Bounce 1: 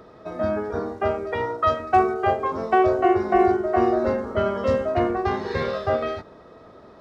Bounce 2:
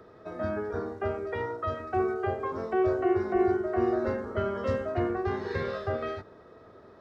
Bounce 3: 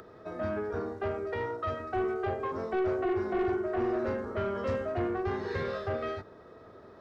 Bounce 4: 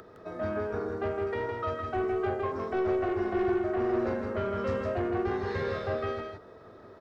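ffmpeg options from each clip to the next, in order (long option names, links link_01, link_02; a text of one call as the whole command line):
ffmpeg -i in.wav -filter_complex "[0:a]equalizer=frequency=100:width_type=o:width=0.67:gain=6,equalizer=frequency=400:width_type=o:width=0.67:gain=5,equalizer=frequency=1600:width_type=o:width=0.67:gain=5,acrossover=split=480|630[link_01][link_02][link_03];[link_02]acompressor=threshold=-36dB:ratio=6[link_04];[link_03]alimiter=limit=-19.5dB:level=0:latency=1:release=110[link_05];[link_01][link_04][link_05]amix=inputs=3:normalize=0,volume=-8dB" out.wav
ffmpeg -i in.wav -af "acompressor=mode=upward:threshold=-48dB:ratio=2.5,asoftclip=type=tanh:threshold=-24.5dB" out.wav
ffmpeg -i in.wav -af "aecho=1:1:161:0.596" out.wav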